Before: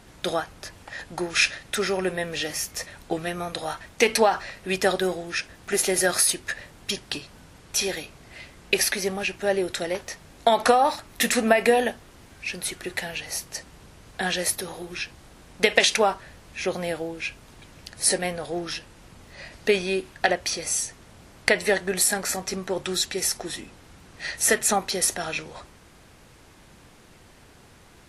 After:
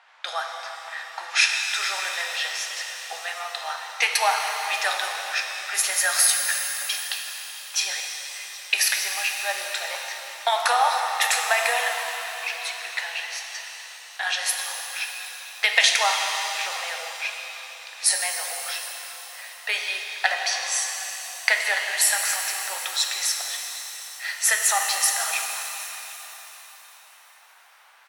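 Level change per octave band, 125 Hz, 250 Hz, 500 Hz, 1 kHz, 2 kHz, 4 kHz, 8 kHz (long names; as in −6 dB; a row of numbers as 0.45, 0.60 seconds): below −40 dB, below −35 dB, −10.5 dB, +1.0 dB, +3.5 dB, +4.0 dB, +3.0 dB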